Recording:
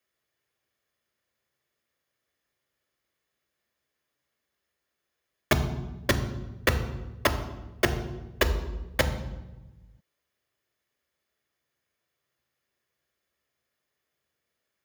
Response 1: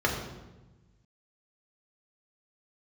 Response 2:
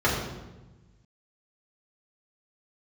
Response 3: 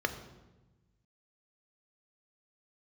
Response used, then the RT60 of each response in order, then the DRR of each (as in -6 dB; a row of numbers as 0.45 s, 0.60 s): 3; 1.1 s, 1.1 s, 1.1 s; -2.0 dB, -7.0 dB, 6.5 dB